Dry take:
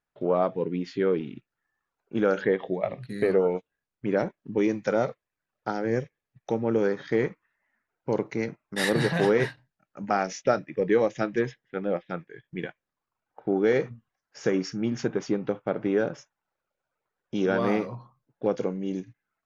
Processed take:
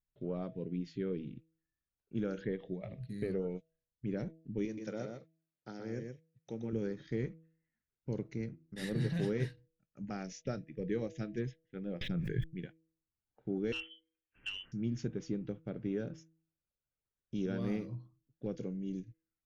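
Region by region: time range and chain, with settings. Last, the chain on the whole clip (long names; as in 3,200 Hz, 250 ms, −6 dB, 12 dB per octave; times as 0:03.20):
0:04.65–0:06.73: high-pass filter 300 Hz 6 dB per octave + single-tap delay 123 ms −5 dB
0:08.38–0:09.10: high-shelf EQ 3,400 Hz −7 dB + mains-hum notches 50/100/150/200/250/300/350/400 Hz
0:12.01–0:12.44: low-shelf EQ 210 Hz +11 dB + envelope flattener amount 100%
0:13.72–0:14.72: parametric band 300 Hz −12.5 dB 0.44 octaves + voice inversion scrambler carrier 3,200 Hz + saturating transformer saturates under 1,400 Hz
whole clip: guitar amp tone stack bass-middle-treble 10-0-1; hum removal 161.6 Hz, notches 4; level +9.5 dB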